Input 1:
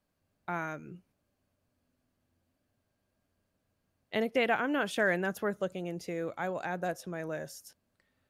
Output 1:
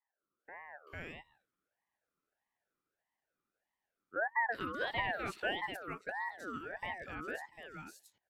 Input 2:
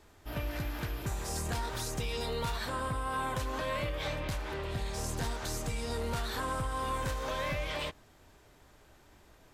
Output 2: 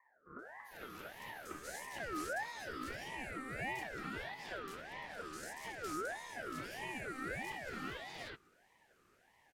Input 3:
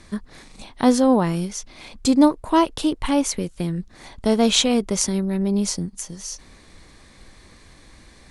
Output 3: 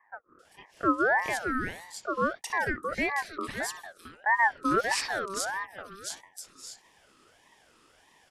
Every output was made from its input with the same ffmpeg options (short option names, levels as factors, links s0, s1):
-filter_complex "[0:a]highpass=f=460:t=q:w=4,acrossover=split=620|3300[s0][s1][s2];[s2]adelay=390[s3];[s1]adelay=450[s4];[s0][s4][s3]amix=inputs=3:normalize=0,aeval=exprs='val(0)*sin(2*PI*1100*n/s+1100*0.3/1.6*sin(2*PI*1.6*n/s))':c=same,volume=0.422"